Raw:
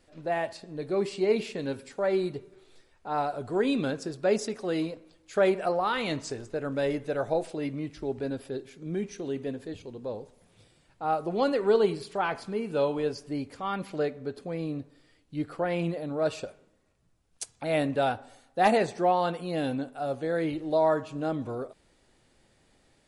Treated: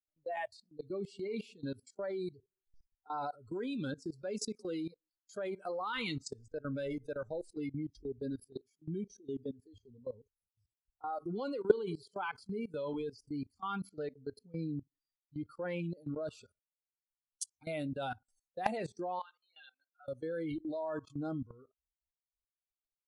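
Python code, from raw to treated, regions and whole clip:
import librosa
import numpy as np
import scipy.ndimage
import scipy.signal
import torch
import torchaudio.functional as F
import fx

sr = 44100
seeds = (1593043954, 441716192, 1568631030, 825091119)

y = fx.chain(x, sr, fx.highpass(hz=1100.0, slope=12),
    fx.air_absorb(metres=210.0), at=(19.19, 20.08))
y = fx.bin_expand(y, sr, power=1.5)
y = fx.noise_reduce_blind(y, sr, reduce_db=22)
y = fx.level_steps(y, sr, step_db=20)
y = y * librosa.db_to_amplitude(3.0)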